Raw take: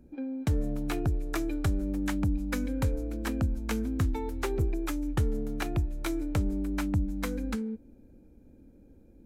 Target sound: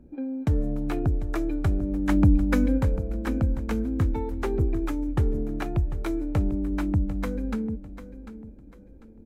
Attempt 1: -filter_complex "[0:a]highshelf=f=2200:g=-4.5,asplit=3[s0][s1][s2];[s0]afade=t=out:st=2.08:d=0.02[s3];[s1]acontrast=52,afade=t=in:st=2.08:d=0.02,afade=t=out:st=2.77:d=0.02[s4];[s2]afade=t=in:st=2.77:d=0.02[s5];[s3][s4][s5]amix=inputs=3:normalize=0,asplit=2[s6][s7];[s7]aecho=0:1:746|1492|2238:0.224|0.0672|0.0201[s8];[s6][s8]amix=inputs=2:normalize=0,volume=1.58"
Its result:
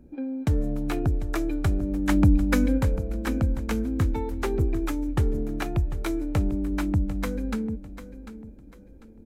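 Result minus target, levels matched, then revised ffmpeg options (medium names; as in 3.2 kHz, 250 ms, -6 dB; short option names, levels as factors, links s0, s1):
4 kHz band +5.0 dB
-filter_complex "[0:a]highshelf=f=2200:g=-12,asplit=3[s0][s1][s2];[s0]afade=t=out:st=2.08:d=0.02[s3];[s1]acontrast=52,afade=t=in:st=2.08:d=0.02,afade=t=out:st=2.77:d=0.02[s4];[s2]afade=t=in:st=2.77:d=0.02[s5];[s3][s4][s5]amix=inputs=3:normalize=0,asplit=2[s6][s7];[s7]aecho=0:1:746|1492|2238:0.224|0.0672|0.0201[s8];[s6][s8]amix=inputs=2:normalize=0,volume=1.58"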